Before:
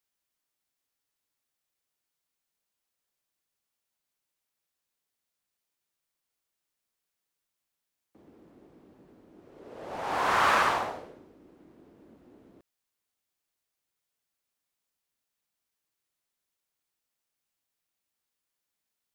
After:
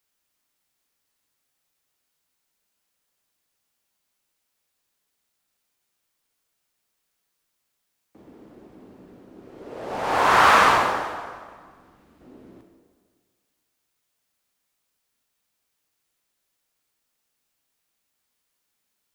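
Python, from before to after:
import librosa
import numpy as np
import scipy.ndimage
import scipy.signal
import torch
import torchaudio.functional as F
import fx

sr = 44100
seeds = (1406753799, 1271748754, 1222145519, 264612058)

y = fx.peak_eq(x, sr, hz=400.0, db=-12.5, octaves=3.0, at=(11.02, 12.21))
y = fx.rev_plate(y, sr, seeds[0], rt60_s=1.7, hf_ratio=0.8, predelay_ms=0, drr_db=3.5)
y = y * 10.0 ** (7.0 / 20.0)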